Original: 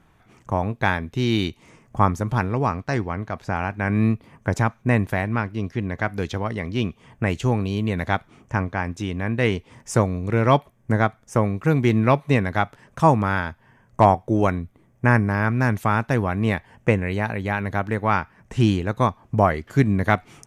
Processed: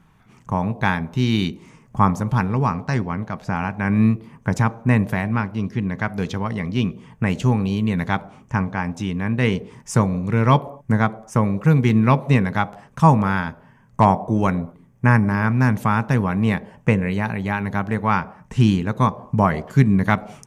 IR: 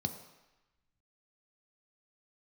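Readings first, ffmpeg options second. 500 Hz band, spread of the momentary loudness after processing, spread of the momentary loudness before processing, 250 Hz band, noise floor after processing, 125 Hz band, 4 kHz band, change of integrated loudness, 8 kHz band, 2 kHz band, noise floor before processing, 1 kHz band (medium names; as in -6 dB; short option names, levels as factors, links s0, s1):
-2.0 dB, 9 LU, 9 LU, +3.5 dB, -53 dBFS, +3.0 dB, +0.5 dB, +2.0 dB, +1.0 dB, 0.0 dB, -58 dBFS, +1.0 dB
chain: -filter_complex "[0:a]asplit=2[s0][s1];[s1]bandpass=f=450:t=q:w=0.59:csg=0[s2];[1:a]atrim=start_sample=2205,afade=t=out:st=0.3:d=0.01,atrim=end_sample=13671[s3];[s2][s3]afir=irnorm=-1:irlink=0,volume=0.316[s4];[s0][s4]amix=inputs=2:normalize=0,volume=1.12"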